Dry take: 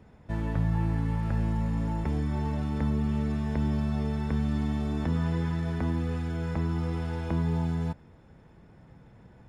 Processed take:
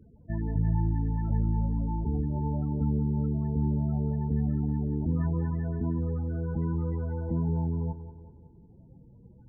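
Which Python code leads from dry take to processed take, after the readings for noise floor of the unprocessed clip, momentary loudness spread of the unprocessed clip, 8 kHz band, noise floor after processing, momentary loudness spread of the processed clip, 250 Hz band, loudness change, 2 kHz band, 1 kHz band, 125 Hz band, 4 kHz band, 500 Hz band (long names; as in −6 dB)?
−54 dBFS, 3 LU, can't be measured, −54 dBFS, 4 LU, −0.5 dB, 0.0 dB, below −10 dB, −3.5 dB, +1.0 dB, below −35 dB, −1.5 dB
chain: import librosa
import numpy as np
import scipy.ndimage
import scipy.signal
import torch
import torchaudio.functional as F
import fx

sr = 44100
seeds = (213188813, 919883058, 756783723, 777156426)

y = fx.spec_topn(x, sr, count=16)
y = fx.echo_bbd(y, sr, ms=184, stages=4096, feedback_pct=51, wet_db=-12.0)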